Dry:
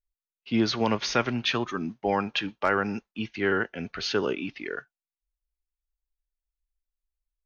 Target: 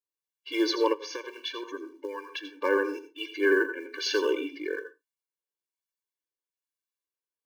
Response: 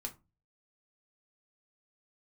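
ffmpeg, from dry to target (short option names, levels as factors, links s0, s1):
-filter_complex "[0:a]asettb=1/sr,asplit=3[s0][s1][s2];[s0]atrim=end=3.454[s3];[s1]atrim=start=3.45:end=3.92,asetpts=PTS-STARTPTS,afade=t=in:d=0.004:c=qsin,afade=t=out:st=0.466:d=0.004:c=qsin,highpass=f=160:w=0.5412,highpass=f=160:w=1.3066,equalizer=f=180:t=q:w=4:g=-4,equalizer=f=340:t=q:w=4:g=4,equalizer=f=500:t=q:w=4:g=-8,equalizer=f=730:t=q:w=4:g=-8,equalizer=f=1300:t=q:w=4:g=8,equalizer=f=2000:t=q:w=4:g=5,lowpass=f=2400:w=0.5412,lowpass=f=2400:w=1.3066[s4];[s2]atrim=start=3.916[s5];[s3][s4]acrossfade=d=0.004:c1=hsin:c2=qsin[s6];[s6][s5]acrossfade=d=0.004:c1=qsin:c2=hsin,asplit=2[s7][s8];[s8]acrusher=bits=5:mode=log:mix=0:aa=0.000001,volume=0.562[s9];[s7][s9]amix=inputs=2:normalize=0,acrossover=split=970[s10][s11];[s10]aeval=exprs='val(0)*(1-0.5/2+0.5/2*cos(2*PI*1.1*n/s))':c=same[s12];[s11]aeval=exprs='val(0)*(1-0.5/2-0.5/2*cos(2*PI*1.1*n/s))':c=same[s13];[s12][s13]amix=inputs=2:normalize=0,asplit=2[s14][s15];[1:a]atrim=start_sample=2205,atrim=end_sample=6174,adelay=82[s16];[s15][s16]afir=irnorm=-1:irlink=0,volume=0.398[s17];[s14][s17]amix=inputs=2:normalize=0,asplit=3[s18][s19][s20];[s18]afade=t=out:st=0.92:d=0.02[s21];[s19]acompressor=threshold=0.0282:ratio=6,afade=t=in:st=0.92:d=0.02,afade=t=out:st=2.63:d=0.02[s22];[s20]afade=t=in:st=2.63:d=0.02[s23];[s21][s22][s23]amix=inputs=3:normalize=0,afftfilt=real='re*eq(mod(floor(b*sr/1024/300),2),1)':imag='im*eq(mod(floor(b*sr/1024/300),2),1)':win_size=1024:overlap=0.75,volume=1.12"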